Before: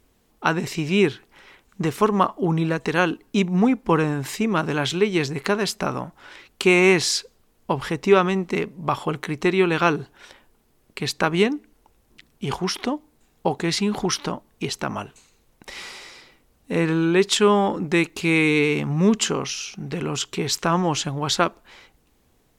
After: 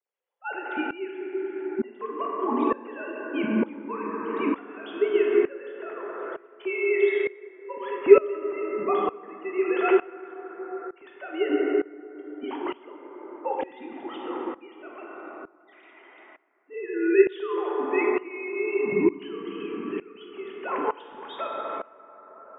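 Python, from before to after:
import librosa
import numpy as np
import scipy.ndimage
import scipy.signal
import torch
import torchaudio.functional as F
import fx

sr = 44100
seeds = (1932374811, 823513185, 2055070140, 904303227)

y = fx.sine_speech(x, sr)
y = fx.rev_plate(y, sr, seeds[0], rt60_s=3.8, hf_ratio=0.3, predelay_ms=0, drr_db=-1.5)
y = fx.tremolo_decay(y, sr, direction='swelling', hz=1.1, depth_db=20)
y = y * librosa.db_to_amplitude(-2.5)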